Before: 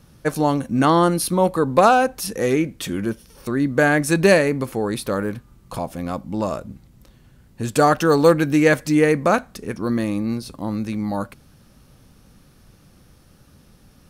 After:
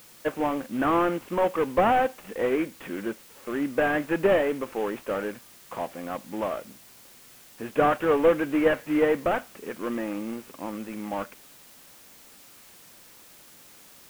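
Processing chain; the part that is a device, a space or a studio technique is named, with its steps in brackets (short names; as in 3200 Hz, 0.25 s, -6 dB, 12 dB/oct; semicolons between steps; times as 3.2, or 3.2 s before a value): army field radio (BPF 330–3200 Hz; CVSD 16 kbps; white noise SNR 24 dB); gain -2.5 dB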